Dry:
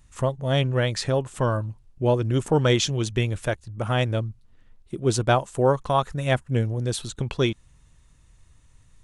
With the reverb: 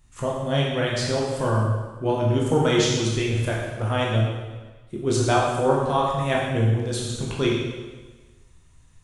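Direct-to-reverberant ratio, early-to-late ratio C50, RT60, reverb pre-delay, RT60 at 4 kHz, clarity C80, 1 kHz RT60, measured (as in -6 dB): -4.0 dB, 0.5 dB, 1.3 s, 8 ms, 1.2 s, 3.0 dB, 1.3 s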